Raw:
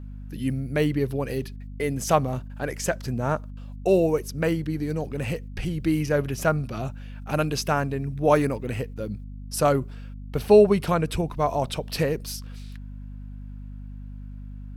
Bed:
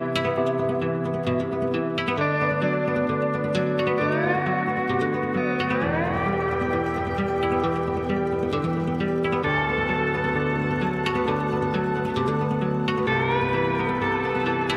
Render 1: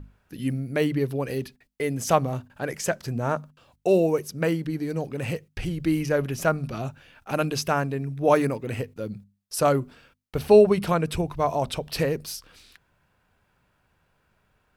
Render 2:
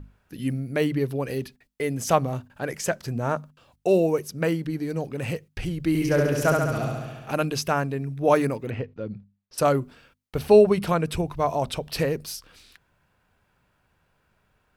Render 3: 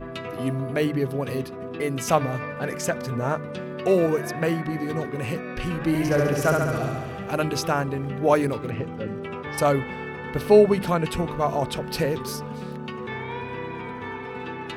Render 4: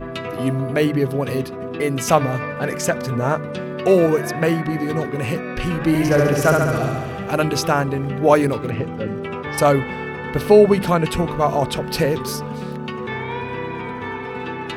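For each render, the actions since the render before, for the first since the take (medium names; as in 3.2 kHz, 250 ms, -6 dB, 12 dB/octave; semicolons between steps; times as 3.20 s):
hum notches 50/100/150/200/250 Hz
5.88–7.34 s: flutter echo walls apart 11.8 m, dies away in 1.3 s; 8.70–9.58 s: distance through air 250 m
add bed -10 dB
trim +5.5 dB; peak limiter -2 dBFS, peak gain reduction 2.5 dB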